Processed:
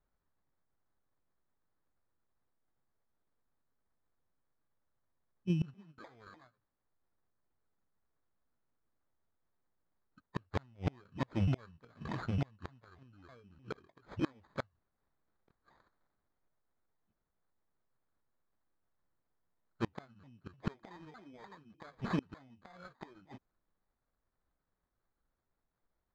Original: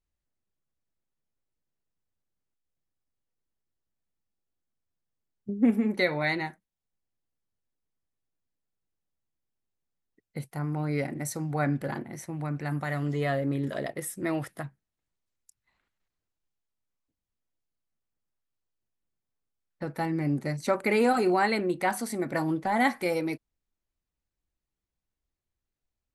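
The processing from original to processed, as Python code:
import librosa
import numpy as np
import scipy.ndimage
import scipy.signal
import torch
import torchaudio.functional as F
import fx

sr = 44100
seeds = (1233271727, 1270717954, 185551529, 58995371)

y = fx.pitch_ramps(x, sr, semitones=-10.0, every_ms=302)
y = fx.curve_eq(y, sr, hz=(540.0, 1500.0, 3000.0, 7300.0), db=(0, 8, 9, -15))
y = fx.sample_hold(y, sr, seeds[0], rate_hz=2800.0, jitter_pct=0)
y = fx.gate_flip(y, sr, shuts_db=-24.0, range_db=-33)
y = fx.air_absorb(y, sr, metres=180.0)
y = y * librosa.db_to_amplitude(3.0)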